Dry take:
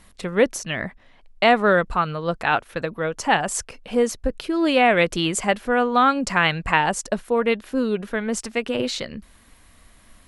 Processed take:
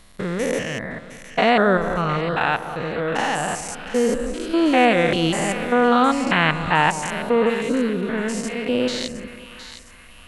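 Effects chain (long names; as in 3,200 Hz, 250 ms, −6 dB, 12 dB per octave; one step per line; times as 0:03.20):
spectrum averaged block by block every 200 ms
echo with a time of its own for lows and highs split 1,100 Hz, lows 189 ms, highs 712 ms, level −11 dB
level +4.5 dB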